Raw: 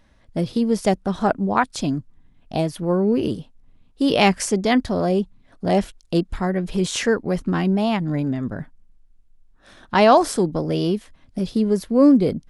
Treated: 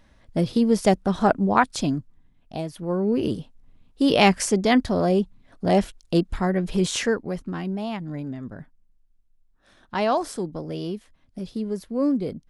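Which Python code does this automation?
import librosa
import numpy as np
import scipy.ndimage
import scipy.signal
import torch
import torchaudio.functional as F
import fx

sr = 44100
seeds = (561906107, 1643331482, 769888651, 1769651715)

y = fx.gain(x, sr, db=fx.line((1.73, 0.5), (2.62, -8.5), (3.38, -0.5), (6.9, -0.5), (7.47, -9.0)))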